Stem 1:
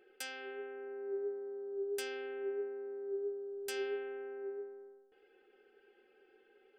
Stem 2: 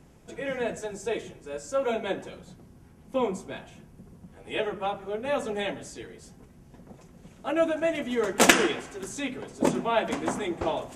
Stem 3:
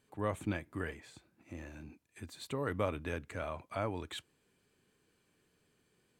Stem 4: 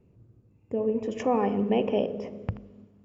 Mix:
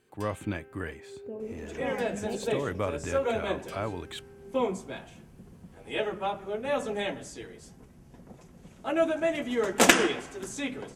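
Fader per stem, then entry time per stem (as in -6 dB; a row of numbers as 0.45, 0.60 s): -7.5, -1.0, +3.0, -11.5 dB; 0.00, 1.40, 0.00, 0.55 s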